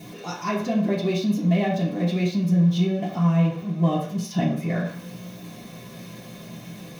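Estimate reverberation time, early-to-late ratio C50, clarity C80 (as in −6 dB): 0.50 s, 5.0 dB, 9.0 dB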